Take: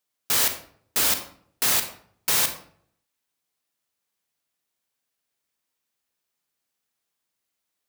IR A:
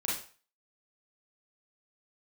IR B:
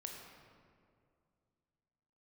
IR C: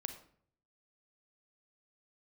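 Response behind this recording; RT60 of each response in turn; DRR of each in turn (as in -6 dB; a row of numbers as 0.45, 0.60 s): C; 0.40, 2.3, 0.60 s; -6.0, 1.0, 7.5 dB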